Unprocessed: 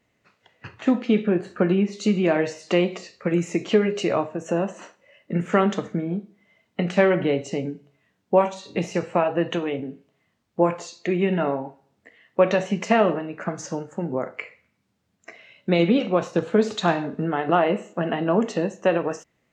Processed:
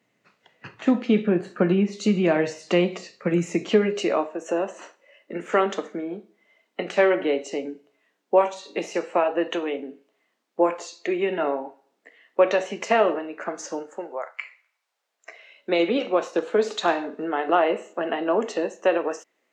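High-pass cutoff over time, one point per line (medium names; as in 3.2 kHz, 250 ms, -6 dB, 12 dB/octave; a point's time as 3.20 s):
high-pass 24 dB/octave
3.45 s 130 Hz
4.34 s 290 Hz
13.91 s 290 Hz
14.39 s 980 Hz
15.75 s 300 Hz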